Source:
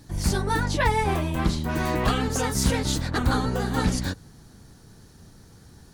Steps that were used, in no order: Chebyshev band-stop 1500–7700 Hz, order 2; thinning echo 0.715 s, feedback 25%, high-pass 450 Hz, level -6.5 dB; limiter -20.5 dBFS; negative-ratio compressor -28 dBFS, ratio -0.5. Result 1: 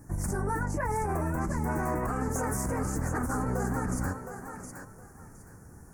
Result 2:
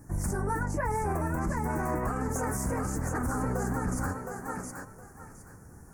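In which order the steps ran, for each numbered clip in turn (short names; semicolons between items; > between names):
limiter > thinning echo > negative-ratio compressor > Chebyshev band-stop; thinning echo > limiter > Chebyshev band-stop > negative-ratio compressor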